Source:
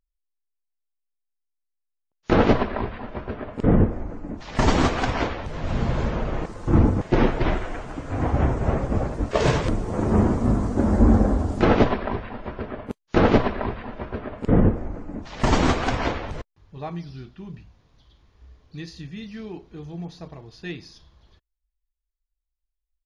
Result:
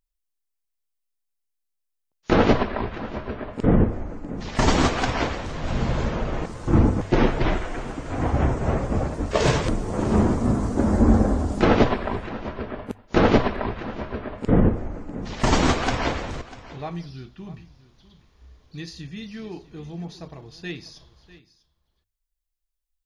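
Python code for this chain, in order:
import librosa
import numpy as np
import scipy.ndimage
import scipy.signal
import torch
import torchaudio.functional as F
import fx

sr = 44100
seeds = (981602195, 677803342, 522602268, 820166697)

y = fx.high_shelf(x, sr, hz=4100.0, db=6.0)
y = fx.hum_notches(y, sr, base_hz=50, count=2)
y = y + 10.0 ** (-18.0 / 20.0) * np.pad(y, (int(646 * sr / 1000.0), 0))[:len(y)]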